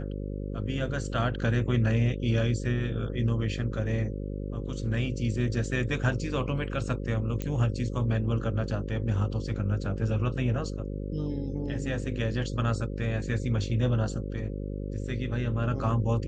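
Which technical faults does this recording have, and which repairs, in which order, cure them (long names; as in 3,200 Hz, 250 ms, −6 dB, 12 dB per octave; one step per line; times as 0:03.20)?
mains buzz 50 Hz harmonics 11 −34 dBFS
0:07.42: click −18 dBFS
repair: click removal
hum removal 50 Hz, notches 11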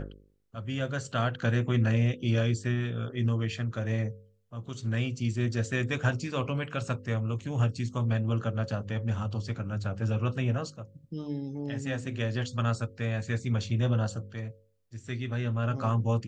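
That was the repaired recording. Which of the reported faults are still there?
none of them is left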